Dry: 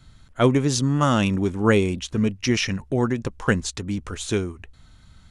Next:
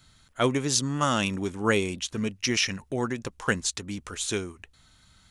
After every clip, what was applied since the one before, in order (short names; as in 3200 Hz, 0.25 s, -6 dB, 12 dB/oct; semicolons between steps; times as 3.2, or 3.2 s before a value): tilt +2 dB/oct; gain -3.5 dB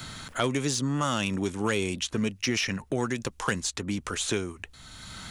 in parallel at +3 dB: limiter -18 dBFS, peak gain reduction 9.5 dB; on the sum: soft clip -7.5 dBFS, distortion -25 dB; three-band squash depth 70%; gain -7 dB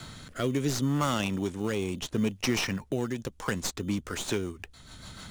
tracing distortion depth 0.037 ms; rotary speaker horn 0.7 Hz, later 6.7 Hz, at 3.37; in parallel at -9 dB: sample-rate reducer 3300 Hz, jitter 0%; on the sum: gain -1.5 dB